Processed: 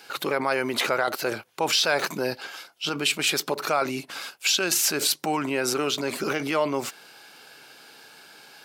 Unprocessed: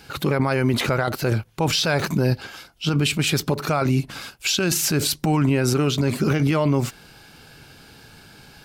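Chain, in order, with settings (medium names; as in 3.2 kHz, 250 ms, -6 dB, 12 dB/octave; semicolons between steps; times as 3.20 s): high-pass 440 Hz 12 dB/octave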